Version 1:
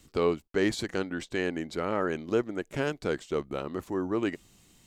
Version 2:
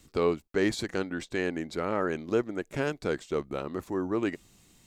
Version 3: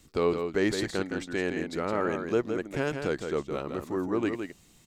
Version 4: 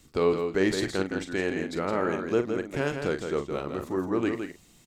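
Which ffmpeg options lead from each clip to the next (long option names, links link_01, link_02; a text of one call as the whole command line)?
ffmpeg -i in.wav -af "bandreject=frequency=3000:width=18" out.wav
ffmpeg -i in.wav -af "aecho=1:1:165:0.473" out.wav
ffmpeg -i in.wav -filter_complex "[0:a]asplit=2[link_01][link_02];[link_02]adelay=42,volume=-10dB[link_03];[link_01][link_03]amix=inputs=2:normalize=0,volume=1dB" out.wav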